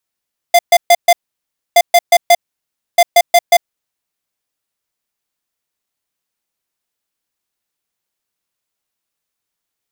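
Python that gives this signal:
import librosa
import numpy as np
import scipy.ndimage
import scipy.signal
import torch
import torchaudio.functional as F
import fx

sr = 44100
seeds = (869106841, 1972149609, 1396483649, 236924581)

y = fx.beep_pattern(sr, wave='square', hz=694.0, on_s=0.05, off_s=0.13, beeps=4, pause_s=0.63, groups=3, level_db=-6.5)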